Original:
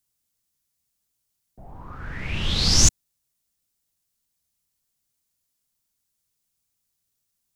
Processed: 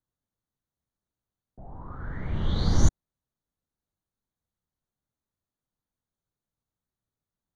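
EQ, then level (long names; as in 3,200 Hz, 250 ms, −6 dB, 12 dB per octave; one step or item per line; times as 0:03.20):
moving average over 17 samples
0.0 dB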